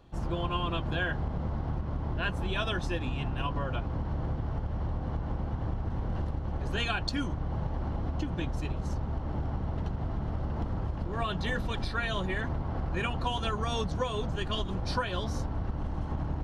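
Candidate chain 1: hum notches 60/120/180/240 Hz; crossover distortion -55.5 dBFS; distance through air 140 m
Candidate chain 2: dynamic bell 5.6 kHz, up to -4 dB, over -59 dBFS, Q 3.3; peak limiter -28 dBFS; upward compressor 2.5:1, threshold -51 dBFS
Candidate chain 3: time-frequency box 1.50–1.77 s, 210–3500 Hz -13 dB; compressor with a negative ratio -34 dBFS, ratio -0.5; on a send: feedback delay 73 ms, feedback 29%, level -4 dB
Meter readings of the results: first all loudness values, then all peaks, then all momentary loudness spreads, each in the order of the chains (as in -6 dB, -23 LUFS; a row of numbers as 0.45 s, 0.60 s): -34.5 LUFS, -37.5 LUFS, -36.0 LUFS; -17.5 dBFS, -28.0 dBFS, -19.5 dBFS; 3 LU, 1 LU, 2 LU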